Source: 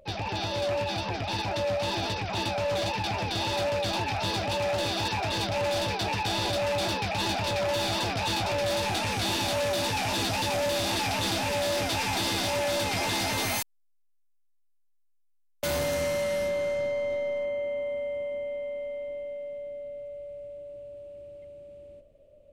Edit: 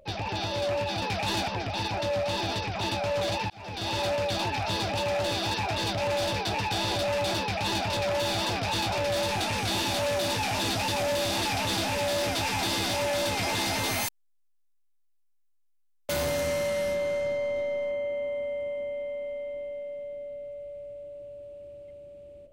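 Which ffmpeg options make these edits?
ffmpeg -i in.wav -filter_complex "[0:a]asplit=4[link_01][link_02][link_03][link_04];[link_01]atrim=end=1.022[link_05];[link_02]atrim=start=6.938:end=7.402[link_06];[link_03]atrim=start=1.018:end=3.04,asetpts=PTS-STARTPTS,afade=type=out:start_time=2.018:duration=0.004:curve=hsin[link_07];[link_04]atrim=start=3.04,asetpts=PTS-STARTPTS,afade=type=in:duration=0.45[link_08];[link_05][link_06]acrossfade=duration=0.004:curve1=hsin:curve2=hsin[link_09];[link_07][link_08]concat=n=2:v=0:a=1[link_10];[link_09][link_10]acrossfade=duration=0.004:curve1=hsin:curve2=hsin" out.wav

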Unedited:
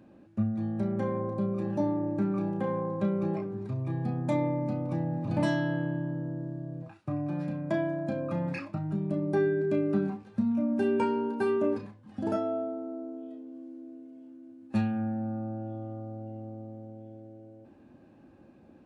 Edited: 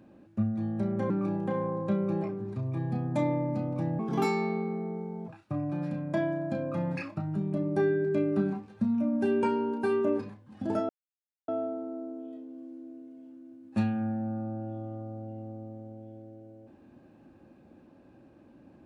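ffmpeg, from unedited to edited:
ffmpeg -i in.wav -filter_complex "[0:a]asplit=5[link_01][link_02][link_03][link_04][link_05];[link_01]atrim=end=1.102[link_06];[link_02]atrim=start=2.228:end=5.124[link_07];[link_03]atrim=start=5.12:end=6.85,asetpts=PTS-STARTPTS,asetrate=59094,aresample=44100,atrim=end_sample=56935,asetpts=PTS-STARTPTS[link_08];[link_04]atrim=start=6.846:end=12.46,asetpts=PTS-STARTPTS,afade=type=out:start_time=5.61:duration=0.004:curve=hsin,apad=pad_dur=0.59[link_09];[link_05]atrim=start=12.46,asetpts=PTS-STARTPTS,afade=type=in:duration=0.004:curve=hsin[link_10];[link_06][link_07]acrossfade=duration=0.004:curve1=hsin:curve2=hsin[link_11];[link_11][link_08]acrossfade=duration=0.004:curve1=hsin:curve2=hsin[link_12];[link_09][link_10]concat=n=2:v=0:a=1[link_13];[link_12][link_13]acrossfade=duration=0.004:curve1=hsin:curve2=hsin" out.wav

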